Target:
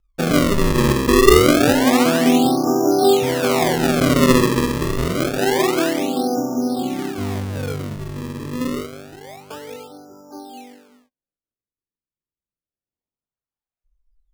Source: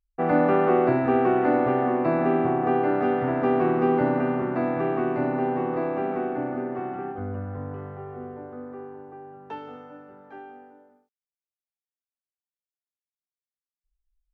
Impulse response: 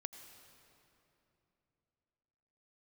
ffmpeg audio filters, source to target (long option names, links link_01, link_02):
-filter_complex "[0:a]aphaser=in_gain=1:out_gain=1:delay=4.4:decay=0.59:speed=0.23:type=triangular,asuperstop=centerf=2700:order=12:qfactor=0.77,tiltshelf=frequency=1500:gain=7.5,acrusher=samples=34:mix=1:aa=0.000001:lfo=1:lforange=54.4:lforate=0.27,asettb=1/sr,asplit=3[link_01][link_02][link_03];[link_01]atrim=end=6.804[link_04];[link_02]atrim=start=6.8:end=8.81,asetpts=PTS-STARTPTS,afade=type=in:duration=0.004:curve=qsin,afade=type=out:start_time=2.006:duration=0.004:curve=qsin,equalizer=frequency=180:width_type=o:width=1.2:gain=7.5[link_05];[link_03]atrim=start=8.806[link_06];[link_04][link_05]acrossfade=duration=0.004:curve1=hsin:curve2=qsin[link_07];[link_07][link_06]acrossfade=duration=0.004:curve1=qsin:curve2=hsin,volume=-1dB"